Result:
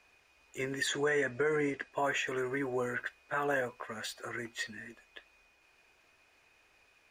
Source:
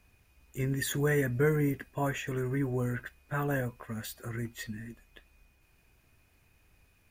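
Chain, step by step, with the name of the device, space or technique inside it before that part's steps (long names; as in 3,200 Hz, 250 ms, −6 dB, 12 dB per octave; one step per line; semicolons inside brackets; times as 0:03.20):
0:00.87–0:01.92: low-pass filter 8,800 Hz 24 dB per octave
DJ mixer with the lows and highs turned down (three-way crossover with the lows and the highs turned down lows −21 dB, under 370 Hz, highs −18 dB, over 7,500 Hz; brickwall limiter −27 dBFS, peak gain reduction 7.5 dB)
level +5 dB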